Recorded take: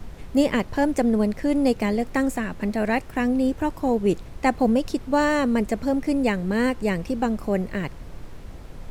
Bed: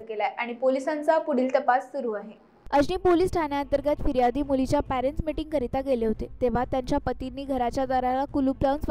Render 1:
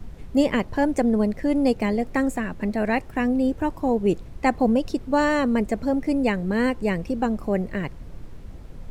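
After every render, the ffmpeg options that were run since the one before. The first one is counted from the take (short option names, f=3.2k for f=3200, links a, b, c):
-af "afftdn=nr=6:nf=-40"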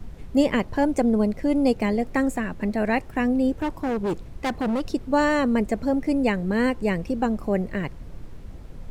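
-filter_complex "[0:a]asettb=1/sr,asplit=3[a][b][c];[a]atrim=end=0.794[d];[b]atrim=start=0.79:end=1.7,asetpts=PTS-STARTPTS,afade=t=in:d=0.004:c=qsin,afade=t=out:st=0.906:d=0.004:c=qsin,bandreject=f=1.8k:w=7.1[e];[c]atrim=start=1.696[f];[d][e]acrossfade=d=0.004:c1=hsin:c2=qsin[g];[g][f]acrossfade=d=0.004:c1=qsin:c2=hsin,asettb=1/sr,asplit=3[h][i][j];[h]atrim=end=3.544[k];[i]atrim=start=3.54:end=4.86,asetpts=PTS-STARTPTS,afade=t=in:d=0.004:c=qsin,afade=t=out:st=1.316:d=0.004:c=qsin,asoftclip=type=hard:threshold=-21.5dB[l];[j]atrim=start=4.856[m];[k][l]acrossfade=d=0.004:c1=hsin:c2=qsin[n];[n][m]acrossfade=d=0.004:c1=qsin:c2=hsin"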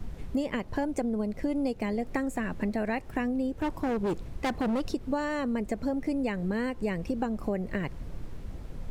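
-af "acompressor=threshold=-26dB:ratio=10"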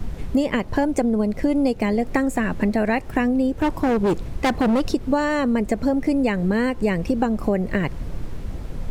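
-af "volume=9.5dB"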